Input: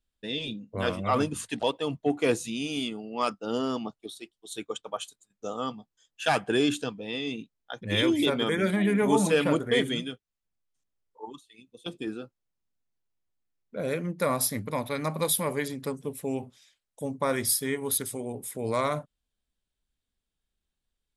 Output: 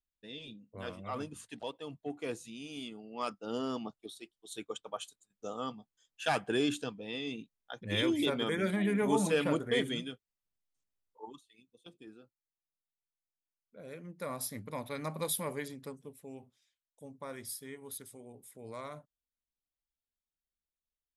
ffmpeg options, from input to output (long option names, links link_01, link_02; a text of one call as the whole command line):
ffmpeg -i in.wav -af "volume=4dB,afade=type=in:start_time=2.62:duration=1.14:silence=0.421697,afade=type=out:start_time=11.27:duration=0.64:silence=0.251189,afade=type=in:start_time=13.85:duration=1.14:silence=0.316228,afade=type=out:start_time=15.49:duration=0.7:silence=0.375837" out.wav